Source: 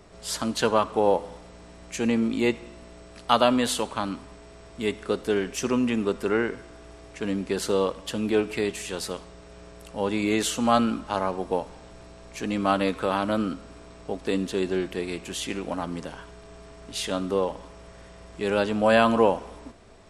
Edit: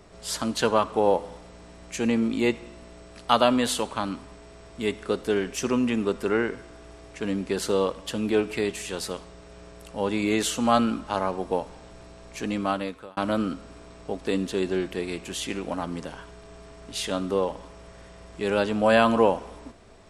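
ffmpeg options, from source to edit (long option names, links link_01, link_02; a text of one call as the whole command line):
ffmpeg -i in.wav -filter_complex "[0:a]asplit=2[link_01][link_02];[link_01]atrim=end=13.17,asetpts=PTS-STARTPTS,afade=type=out:start_time=12.47:duration=0.7[link_03];[link_02]atrim=start=13.17,asetpts=PTS-STARTPTS,afade=type=in:duration=0.004:curve=hsin[link_04];[link_03][link_04]concat=n=2:v=0:a=1" out.wav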